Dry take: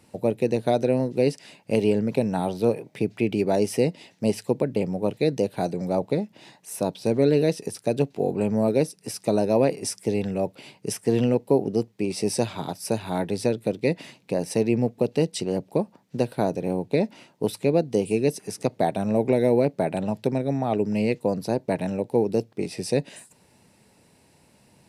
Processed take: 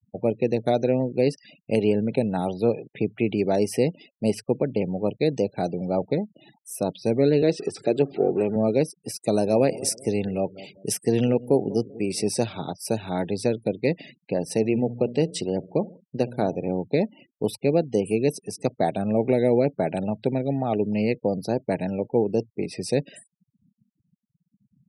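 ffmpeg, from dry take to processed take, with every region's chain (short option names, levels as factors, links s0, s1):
-filter_complex "[0:a]asettb=1/sr,asplit=3[s0][s1][s2];[s0]atrim=end=7.424[s3];[s1]atrim=start=7.42:end=8.56,asetpts=PTS-STARTPTS,afade=t=in:d=0.004:c=qsin,afade=t=out:st=1.136:d=0.004:c=qsin,aeval=exprs='val(0)+0.5*0.0141*sgn(val(0))':c=same,highpass=100,equalizer=f=120:t=q:w=4:g=-6,equalizer=f=210:t=q:w=4:g=-5,equalizer=f=370:t=q:w=4:g=7,equalizer=f=6000:t=q:w=4:g=-4,lowpass=f=8200:w=0.5412,lowpass=f=8200:w=1.3066[s4];[s2]atrim=start=8.556[s5];[s3][s4]acrossfade=d=0.004:c1=hsin:c2=qsin[s6];[s6][s5]acrossfade=d=0.004:c1=qsin:c2=hsin,asettb=1/sr,asplit=3[s7][s8][s9];[s7]atrim=end=9.224[s10];[s8]atrim=start=9.22:end=12.22,asetpts=PTS-STARTPTS,afade=t=in:d=0.004:c=qsin,afade=t=out:st=2.996:d=0.004:c=qsin,highshelf=f=5400:g=6.5,asplit=2[s11][s12];[s12]adelay=193,lowpass=f=2500:p=1,volume=0.133,asplit=2[s13][s14];[s14]adelay=193,lowpass=f=2500:p=1,volume=0.31,asplit=2[s15][s16];[s16]adelay=193,lowpass=f=2500:p=1,volume=0.31[s17];[s11][s13][s15][s17]amix=inputs=4:normalize=0,atrim=end_sample=132300[s18];[s9]atrim=start=12.216[s19];[s10][s18]acrossfade=d=0.004:c1=hsin:c2=qsin[s20];[s20][s19]acrossfade=d=0.004:c1=qsin:c2=hsin,asettb=1/sr,asplit=3[s21][s22][s23];[s21]atrim=end=14.434[s24];[s22]atrim=start=14.43:end=16.69,asetpts=PTS-STARTPTS,afade=t=in:d=0.004:c=qsin,afade=t=out:st=2.256:d=0.004:c=qsin,bandreject=f=59.42:t=h:w=4,bandreject=f=118.84:t=h:w=4,bandreject=f=178.26:t=h:w=4,bandreject=f=237.68:t=h:w=4,aecho=1:1:66|132|198:0.0944|0.0434|0.02,atrim=end_sample=99666[s25];[s23]atrim=start=16.686[s26];[s24][s25]acrossfade=d=0.004:c1=hsin:c2=qsin[s27];[s27][s26]acrossfade=d=0.004:c1=qsin:c2=hsin,bandreject=f=1000:w=6.7,afftfilt=real='re*gte(hypot(re,im),0.00891)':imag='im*gte(hypot(re,im),0.00891)':win_size=1024:overlap=0.75"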